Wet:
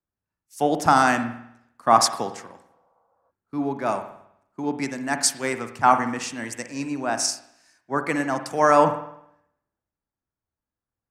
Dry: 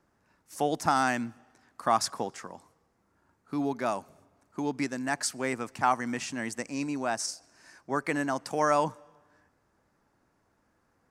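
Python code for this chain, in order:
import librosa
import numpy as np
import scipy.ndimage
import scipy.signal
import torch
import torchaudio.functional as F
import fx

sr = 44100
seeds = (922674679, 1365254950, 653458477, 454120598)

y = fx.rev_spring(x, sr, rt60_s=1.1, pass_ms=(51,), chirp_ms=70, drr_db=7.5)
y = fx.spec_repair(y, sr, seeds[0], start_s=2.71, length_s=0.57, low_hz=440.0, high_hz=1500.0, source='before')
y = fx.band_widen(y, sr, depth_pct=70)
y = y * librosa.db_to_amplitude(4.5)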